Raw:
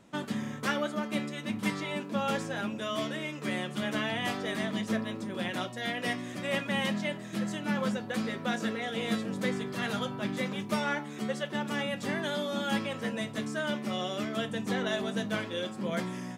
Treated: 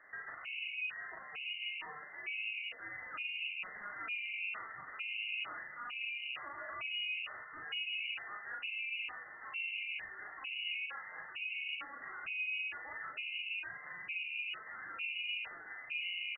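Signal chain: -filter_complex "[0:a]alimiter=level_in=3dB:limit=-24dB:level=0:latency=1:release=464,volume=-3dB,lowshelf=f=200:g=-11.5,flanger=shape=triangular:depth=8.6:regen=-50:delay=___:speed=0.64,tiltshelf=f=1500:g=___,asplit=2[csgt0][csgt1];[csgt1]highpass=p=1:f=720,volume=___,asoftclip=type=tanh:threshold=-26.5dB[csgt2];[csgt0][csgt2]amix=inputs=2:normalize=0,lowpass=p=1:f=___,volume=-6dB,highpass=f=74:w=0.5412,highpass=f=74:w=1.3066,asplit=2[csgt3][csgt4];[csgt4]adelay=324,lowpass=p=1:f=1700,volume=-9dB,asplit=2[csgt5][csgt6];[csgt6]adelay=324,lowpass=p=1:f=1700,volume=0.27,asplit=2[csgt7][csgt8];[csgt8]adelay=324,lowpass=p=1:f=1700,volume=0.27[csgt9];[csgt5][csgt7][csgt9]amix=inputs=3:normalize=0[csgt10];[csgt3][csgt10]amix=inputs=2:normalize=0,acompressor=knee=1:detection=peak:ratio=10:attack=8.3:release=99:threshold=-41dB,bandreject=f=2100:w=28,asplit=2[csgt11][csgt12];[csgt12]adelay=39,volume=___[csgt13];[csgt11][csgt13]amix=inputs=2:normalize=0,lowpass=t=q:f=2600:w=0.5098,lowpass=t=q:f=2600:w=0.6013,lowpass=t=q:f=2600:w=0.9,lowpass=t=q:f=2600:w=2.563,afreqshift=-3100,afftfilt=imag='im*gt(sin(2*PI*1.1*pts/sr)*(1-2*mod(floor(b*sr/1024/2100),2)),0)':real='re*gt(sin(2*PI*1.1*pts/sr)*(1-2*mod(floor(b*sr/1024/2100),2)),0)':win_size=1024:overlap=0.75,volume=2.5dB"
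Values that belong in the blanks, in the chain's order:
5.6, 6.5, 18dB, 2400, -3dB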